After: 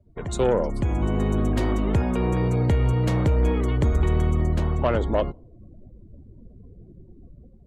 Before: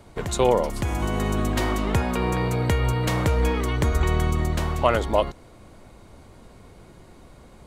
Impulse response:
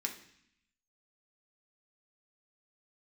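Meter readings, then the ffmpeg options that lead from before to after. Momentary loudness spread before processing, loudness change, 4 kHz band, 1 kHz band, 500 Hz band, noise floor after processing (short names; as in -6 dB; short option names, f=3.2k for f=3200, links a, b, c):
5 LU, +0.5 dB, -7.5 dB, -5.0 dB, -1.0 dB, -50 dBFS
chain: -filter_complex "[0:a]afftdn=nr=29:nf=-41,acrossover=split=540[a][b];[a]dynaudnorm=f=220:g=3:m=9dB[c];[c][b]amix=inputs=2:normalize=0,asoftclip=type=tanh:threshold=-7.5dB,volume=-5dB"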